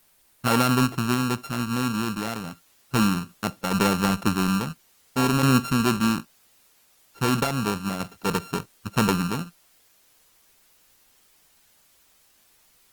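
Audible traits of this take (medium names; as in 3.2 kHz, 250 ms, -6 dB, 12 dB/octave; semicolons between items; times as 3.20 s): a buzz of ramps at a fixed pitch in blocks of 32 samples; random-step tremolo; a quantiser's noise floor 10-bit, dither triangular; Opus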